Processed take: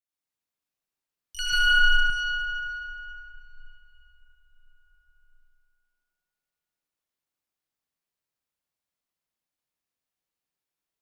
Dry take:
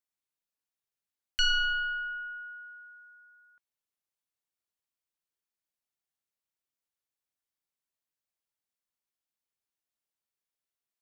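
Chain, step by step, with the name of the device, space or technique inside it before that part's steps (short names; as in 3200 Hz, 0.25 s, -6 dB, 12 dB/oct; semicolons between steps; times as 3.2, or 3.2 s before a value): shimmer-style reverb (harmoniser +12 st -10 dB; reverb RT60 4.5 s, pre-delay 71 ms, DRR -8.5 dB); 1.52–2.1 comb 6.8 ms, depth 92%; gain -5.5 dB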